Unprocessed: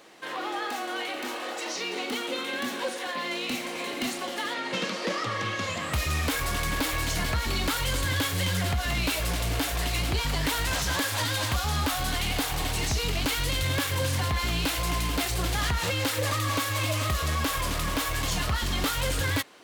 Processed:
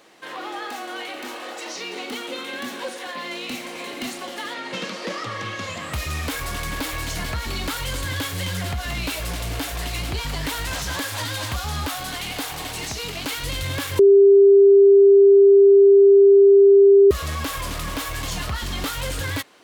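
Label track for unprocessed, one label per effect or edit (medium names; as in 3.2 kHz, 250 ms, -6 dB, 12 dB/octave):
11.870000	13.430000	high-pass 180 Hz 6 dB/octave
13.990000	17.110000	bleep 397 Hz -8 dBFS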